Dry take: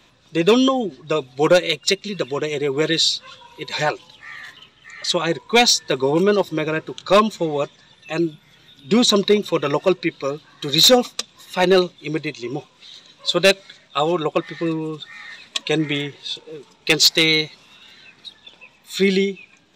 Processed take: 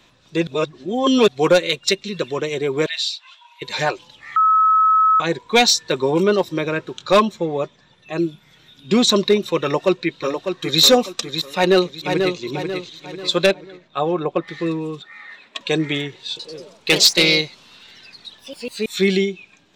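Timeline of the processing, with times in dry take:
0.47–1.28 s: reverse
2.86–3.62 s: rippled Chebyshev high-pass 630 Hz, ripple 9 dB
4.36–5.20 s: bleep 1.29 kHz -11 dBFS
7.25–8.19 s: treble shelf 2.1 kHz -8 dB
9.61–10.81 s: echo throw 600 ms, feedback 30%, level -7 dB
11.56–12.40 s: echo throw 490 ms, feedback 45%, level -5.5 dB
13.46–14.48 s: low-pass 1.3 kHz 6 dB/octave
15.02–15.61 s: three-band isolator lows -14 dB, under 220 Hz, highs -14 dB, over 2.9 kHz
16.30–19.07 s: ever faster or slower copies 92 ms, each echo +2 st, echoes 3, each echo -6 dB

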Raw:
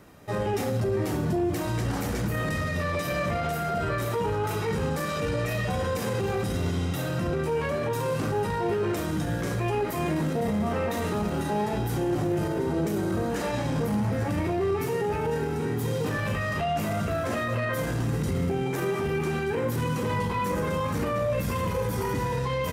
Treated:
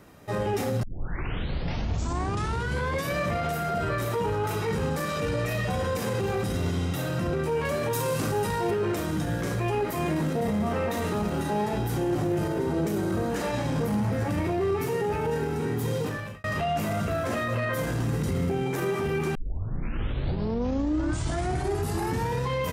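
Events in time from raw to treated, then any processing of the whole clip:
0.83 s: tape start 2.33 s
7.65–8.71 s: treble shelf 4.7 kHz +10 dB
15.98–16.44 s: fade out
19.35 s: tape start 3.07 s

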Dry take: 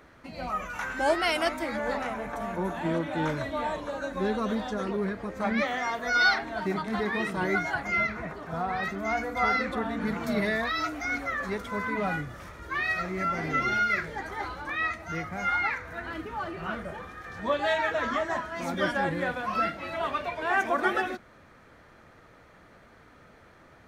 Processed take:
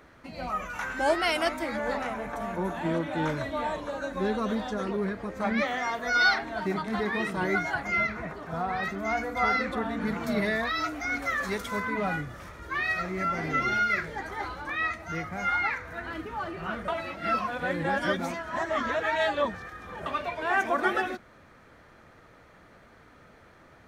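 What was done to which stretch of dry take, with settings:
11.22–11.80 s: treble shelf 3 kHz +10 dB
16.88–20.06 s: reverse

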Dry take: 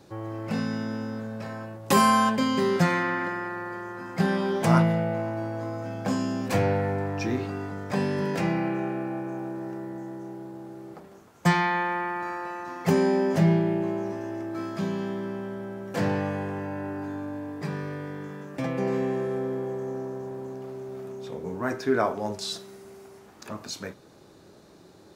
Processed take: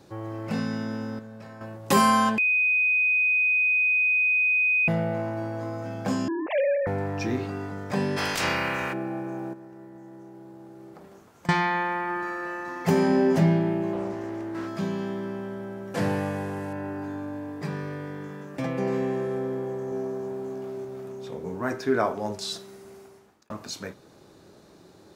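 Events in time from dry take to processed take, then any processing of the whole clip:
1.19–1.61 s: gain -7.5 dB
2.38–4.88 s: bleep 2.5 kHz -19 dBFS
6.28–6.87 s: formants replaced by sine waves
8.16–8.92 s: spectral peaks clipped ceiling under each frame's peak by 28 dB
9.53–11.49 s: compression 12:1, threshold -41 dBFS
12.02–13.12 s: reverb throw, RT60 2.3 s, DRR 5 dB
13.93–14.68 s: loudspeaker Doppler distortion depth 0.35 ms
15.94–16.73 s: CVSD coder 64 kbps
19.90–20.85 s: doubling 20 ms -3 dB
22.97–23.50 s: fade out

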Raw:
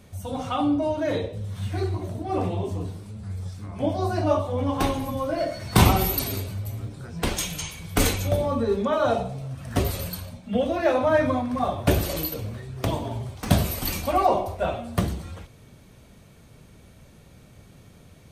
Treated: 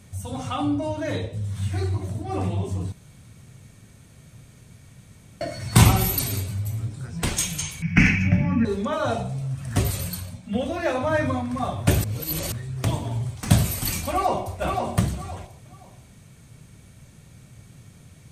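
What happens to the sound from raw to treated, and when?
2.92–5.41 s: room tone
7.82–8.65 s: FFT filter 100 Hz 0 dB, 180 Hz +14 dB, 520 Hz -12 dB, 760 Hz -3 dB, 1.2 kHz -5 dB, 1.7 kHz +11 dB, 2.6 kHz +12 dB, 3.7 kHz -23 dB, 5.5 kHz -3 dB, 7.8 kHz -29 dB
12.04–12.52 s: reverse
14.09–14.57 s: echo throw 520 ms, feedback 25%, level -4.5 dB
whole clip: ten-band graphic EQ 125 Hz +8 dB, 500 Hz -3 dB, 2 kHz +3 dB, 8 kHz +9 dB; trim -2 dB

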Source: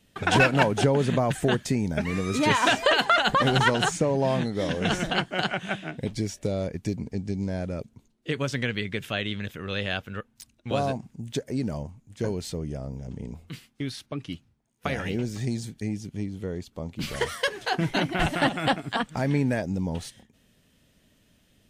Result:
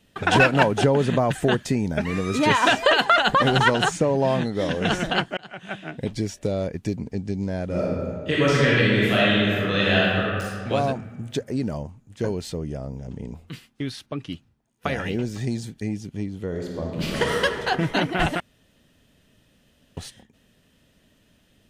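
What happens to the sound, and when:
5.37–6.04 s: fade in
7.65–10.69 s: reverb throw, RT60 2 s, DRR -7.5 dB
16.47–17.42 s: reverb throw, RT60 2.5 s, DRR -1.5 dB
18.40–19.97 s: room tone
whole clip: tone controls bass -2 dB, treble -4 dB; band-stop 2.2 kHz, Q 19; trim +3.5 dB

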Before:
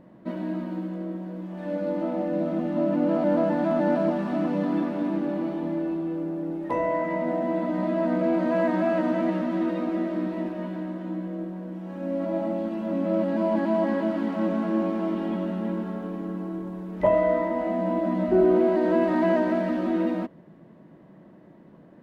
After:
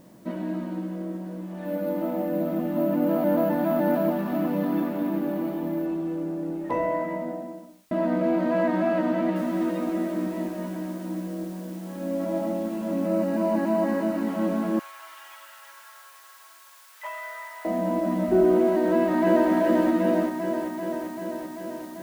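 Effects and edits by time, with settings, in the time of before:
1.65–5.86 s: careless resampling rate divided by 3×, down none, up hold
6.75–7.91 s: studio fade out
9.36 s: noise floor step -64 dB -53 dB
13.06–14.28 s: band-stop 3.3 kHz, Q 7.3
14.79–17.65 s: high-pass 1.2 kHz 24 dB/octave
18.87–19.51 s: echo throw 390 ms, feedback 75%, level -3 dB

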